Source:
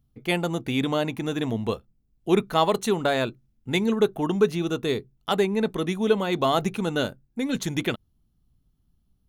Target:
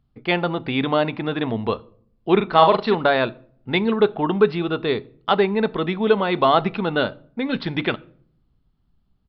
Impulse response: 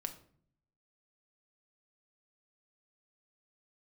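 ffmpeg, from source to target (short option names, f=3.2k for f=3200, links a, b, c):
-filter_complex "[0:a]asettb=1/sr,asplit=3[a][b][c];[a]atrim=end=2.364[d];[b]atrim=start=2.36:end=2.95,asetpts=PTS-STARTPTS,afade=t=in:d=0.004:c=qsin,afade=t=out:st=0.586:d=0.004:c=qsin,asplit=2[e][f];[f]adelay=42,volume=-6dB[g];[e][g]amix=inputs=2:normalize=0,atrim=end_sample=26019[h];[c]atrim=start=2.946[i];[d][h]acrossfade=d=0.004:c1=hsin:c2=qsin[j];[j][i]acrossfade=d=0.004:c1=qsin:c2=hsin,asplit=2[k][l];[1:a]atrim=start_sample=2205[m];[l][m]afir=irnorm=-1:irlink=0,volume=-8dB[n];[k][n]amix=inputs=2:normalize=0,aresample=11025,aresample=44100,equalizer=f=1.1k:w=0.54:g=7,volume=-1.5dB"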